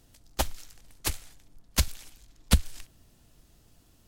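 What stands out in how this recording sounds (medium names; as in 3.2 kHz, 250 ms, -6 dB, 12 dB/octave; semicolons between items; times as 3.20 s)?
noise floor -61 dBFS; spectral tilt -3.5 dB/octave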